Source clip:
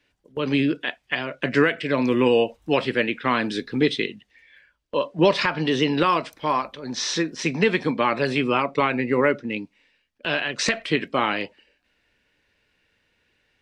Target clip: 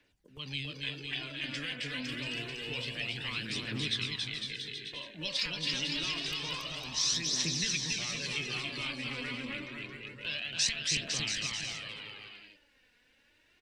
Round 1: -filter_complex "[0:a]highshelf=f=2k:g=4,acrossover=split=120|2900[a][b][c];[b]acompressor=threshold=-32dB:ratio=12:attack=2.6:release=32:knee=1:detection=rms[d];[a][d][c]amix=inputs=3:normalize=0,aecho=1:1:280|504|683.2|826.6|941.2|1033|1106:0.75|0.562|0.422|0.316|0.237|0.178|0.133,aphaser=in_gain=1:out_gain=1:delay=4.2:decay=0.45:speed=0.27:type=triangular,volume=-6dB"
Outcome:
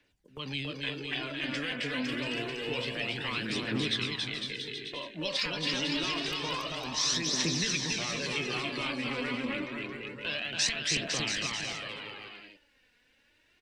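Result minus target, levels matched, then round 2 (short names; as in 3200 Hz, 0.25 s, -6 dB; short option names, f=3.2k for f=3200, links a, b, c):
compressor: peak gain reduction -9.5 dB
-filter_complex "[0:a]highshelf=f=2k:g=4,acrossover=split=120|2900[a][b][c];[b]acompressor=threshold=-42.5dB:ratio=12:attack=2.6:release=32:knee=1:detection=rms[d];[a][d][c]amix=inputs=3:normalize=0,aecho=1:1:280|504|683.2|826.6|941.2|1033|1106:0.75|0.562|0.422|0.316|0.237|0.178|0.133,aphaser=in_gain=1:out_gain=1:delay=4.2:decay=0.45:speed=0.27:type=triangular,volume=-6dB"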